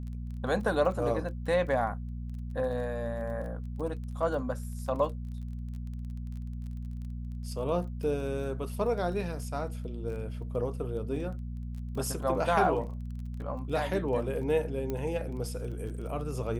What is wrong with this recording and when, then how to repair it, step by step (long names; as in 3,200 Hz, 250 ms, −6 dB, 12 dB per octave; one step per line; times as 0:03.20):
surface crackle 20 per second −40 dBFS
mains hum 60 Hz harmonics 4 −37 dBFS
0:14.90: click −21 dBFS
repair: click removal
hum removal 60 Hz, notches 4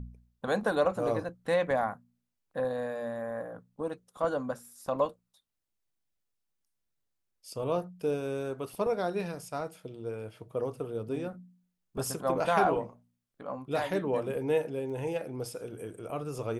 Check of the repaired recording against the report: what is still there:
0:14.90: click